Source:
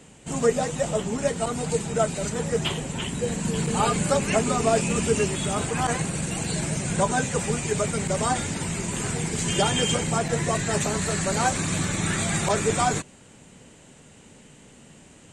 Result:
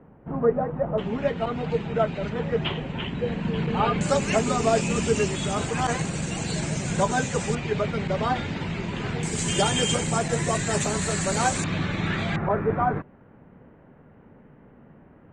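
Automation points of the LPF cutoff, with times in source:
LPF 24 dB/oct
1400 Hz
from 0.98 s 3300 Hz
from 4.01 s 7200 Hz
from 7.55 s 4000 Hz
from 9.23 s 9600 Hz
from 11.64 s 3800 Hz
from 12.36 s 1600 Hz

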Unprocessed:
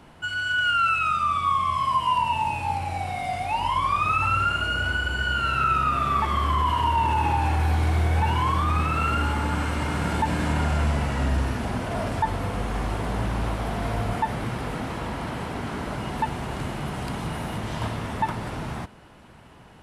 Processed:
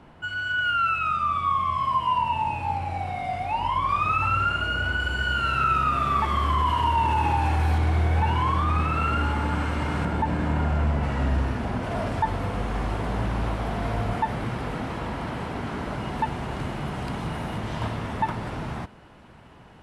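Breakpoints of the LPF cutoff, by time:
LPF 6 dB/oct
2200 Hz
from 3.89 s 3600 Hz
from 5 s 7700 Hz
from 7.78 s 3400 Hz
from 10.05 s 1400 Hz
from 11.03 s 2600 Hz
from 11.83 s 4400 Hz

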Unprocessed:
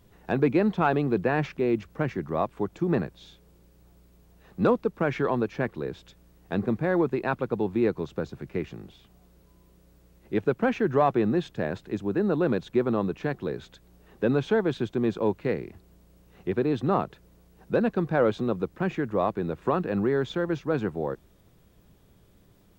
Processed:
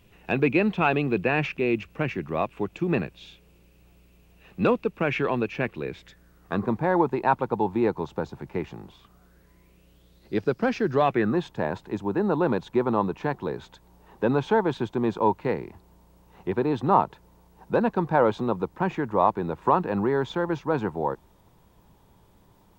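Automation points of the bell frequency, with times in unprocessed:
bell +14 dB 0.46 oct
5.81 s 2600 Hz
6.76 s 890 Hz
8.81 s 890 Hz
10.41 s 5000 Hz
10.92 s 5000 Hz
11.38 s 920 Hz

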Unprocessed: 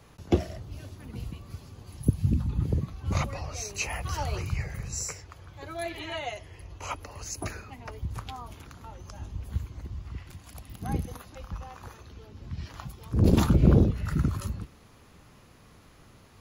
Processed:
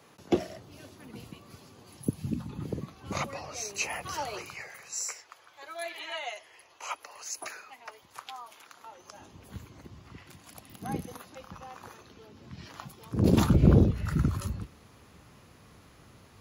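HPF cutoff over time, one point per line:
4.09 s 210 Hz
4.77 s 730 Hz
8.65 s 730 Hz
9.55 s 180 Hz
13.03 s 180 Hz
13.6 s 53 Hz

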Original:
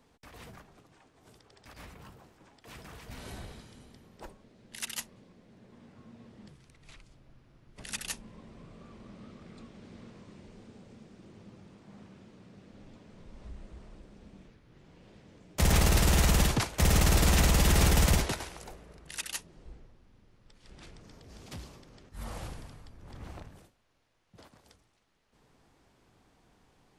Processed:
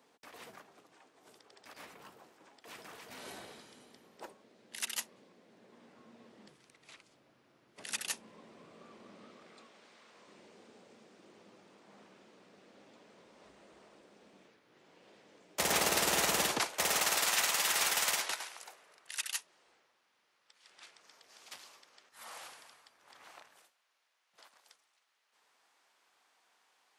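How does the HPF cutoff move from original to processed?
9.15 s 330 Hz
10.05 s 900 Hz
10.36 s 410 Hz
16.56 s 410 Hz
17.33 s 970 Hz

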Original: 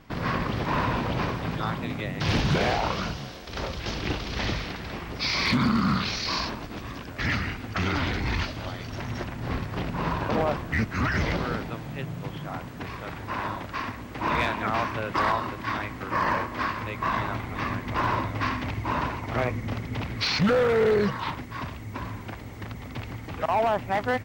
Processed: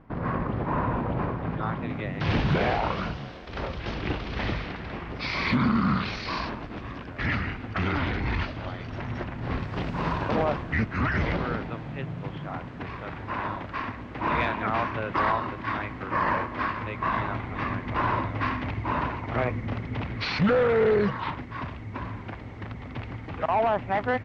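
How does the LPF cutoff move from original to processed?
1.31 s 1300 Hz
2.19 s 2800 Hz
9.3 s 2800 Hz
9.96 s 6100 Hz
10.92 s 3000 Hz

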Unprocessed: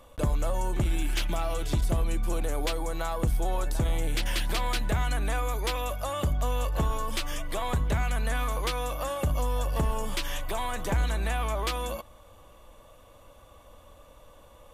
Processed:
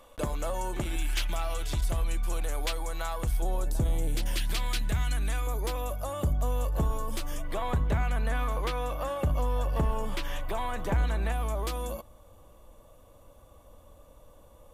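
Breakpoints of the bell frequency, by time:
bell -9 dB 2.7 oct
77 Hz
from 0.96 s 240 Hz
from 3.42 s 2000 Hz
from 4.37 s 640 Hz
from 5.47 s 2700 Hz
from 7.44 s 8400 Hz
from 11.32 s 2400 Hz

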